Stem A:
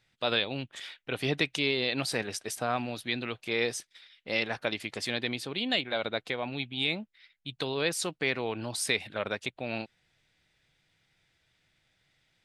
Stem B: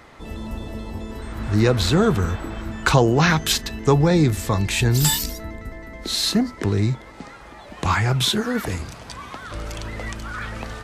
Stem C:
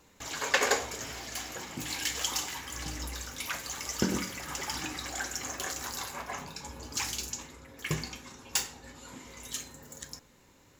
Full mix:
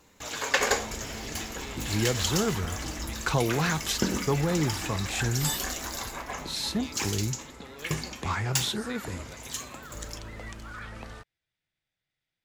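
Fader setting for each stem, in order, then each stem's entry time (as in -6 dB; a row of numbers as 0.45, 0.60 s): -16.0, -10.0, +1.5 dB; 0.00, 0.40, 0.00 s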